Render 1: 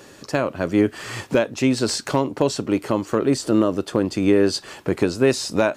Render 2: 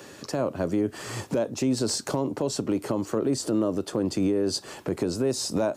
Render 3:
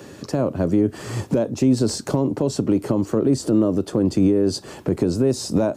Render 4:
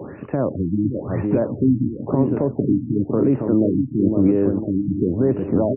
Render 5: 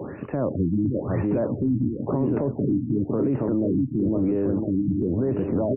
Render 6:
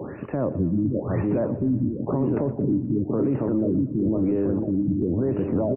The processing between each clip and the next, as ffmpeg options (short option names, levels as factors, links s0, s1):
-filter_complex "[0:a]highpass=67,acrossover=split=130|1100|4500[s0][s1][s2][s3];[s2]acompressor=threshold=0.00631:ratio=5[s4];[s0][s1][s4][s3]amix=inputs=4:normalize=0,alimiter=limit=0.158:level=0:latency=1:release=91"
-af "lowshelf=f=450:g=10.5"
-filter_complex "[0:a]areverse,acompressor=mode=upward:threshold=0.1:ratio=2.5,areverse,asplit=2[s0][s1];[s1]adelay=506,lowpass=f=1800:p=1,volume=0.562,asplit=2[s2][s3];[s3]adelay=506,lowpass=f=1800:p=1,volume=0.48,asplit=2[s4][s5];[s5]adelay=506,lowpass=f=1800:p=1,volume=0.48,asplit=2[s6][s7];[s7]adelay=506,lowpass=f=1800:p=1,volume=0.48,asplit=2[s8][s9];[s9]adelay=506,lowpass=f=1800:p=1,volume=0.48,asplit=2[s10][s11];[s11]adelay=506,lowpass=f=1800:p=1,volume=0.48[s12];[s0][s2][s4][s6][s8][s10][s12]amix=inputs=7:normalize=0,afftfilt=real='re*lt(b*sr/1024,300*pow(3000/300,0.5+0.5*sin(2*PI*0.97*pts/sr)))':imag='im*lt(b*sr/1024,300*pow(3000/300,0.5+0.5*sin(2*PI*0.97*pts/sr)))':win_size=1024:overlap=0.75"
-af "alimiter=limit=0.158:level=0:latency=1:release=10"
-af "aecho=1:1:119|238|357|476|595:0.158|0.0824|0.0429|0.0223|0.0116"